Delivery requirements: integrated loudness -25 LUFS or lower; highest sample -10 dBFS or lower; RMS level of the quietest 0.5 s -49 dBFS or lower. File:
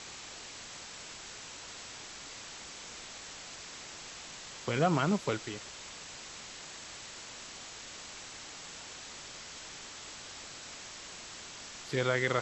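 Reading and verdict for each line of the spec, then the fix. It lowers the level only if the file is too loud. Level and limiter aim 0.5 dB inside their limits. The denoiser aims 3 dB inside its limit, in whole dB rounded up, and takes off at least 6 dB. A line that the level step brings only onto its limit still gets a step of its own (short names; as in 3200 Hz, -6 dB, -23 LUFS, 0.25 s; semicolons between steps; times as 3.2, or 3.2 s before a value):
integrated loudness -38.5 LUFS: OK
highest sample -15.0 dBFS: OK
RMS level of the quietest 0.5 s -47 dBFS: fail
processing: denoiser 6 dB, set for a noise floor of -47 dBFS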